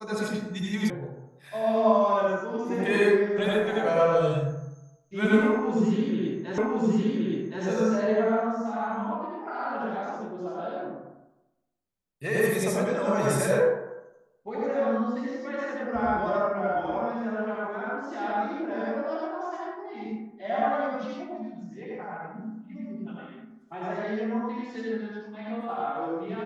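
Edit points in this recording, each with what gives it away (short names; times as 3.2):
0.9 sound cut off
6.58 repeat of the last 1.07 s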